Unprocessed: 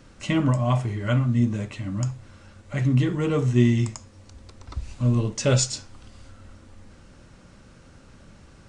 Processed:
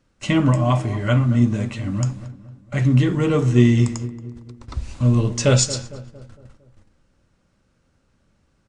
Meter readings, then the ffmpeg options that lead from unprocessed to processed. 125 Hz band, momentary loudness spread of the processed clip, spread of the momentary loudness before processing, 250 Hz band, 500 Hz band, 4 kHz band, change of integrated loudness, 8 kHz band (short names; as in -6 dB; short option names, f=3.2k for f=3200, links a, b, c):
+4.5 dB, 18 LU, 14 LU, +4.5 dB, +4.5 dB, +4.5 dB, +4.5 dB, +4.5 dB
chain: -filter_complex "[0:a]agate=range=-19dB:threshold=-42dB:ratio=16:detection=peak,asplit=2[a][b];[b]adelay=228,lowpass=f=1.5k:p=1,volume=-14dB,asplit=2[c][d];[d]adelay=228,lowpass=f=1.5k:p=1,volume=0.5,asplit=2[e][f];[f]adelay=228,lowpass=f=1.5k:p=1,volume=0.5,asplit=2[g][h];[h]adelay=228,lowpass=f=1.5k:p=1,volume=0.5,asplit=2[i][j];[j]adelay=228,lowpass=f=1.5k:p=1,volume=0.5[k];[a][c][e][g][i][k]amix=inputs=6:normalize=0,volume=4.5dB"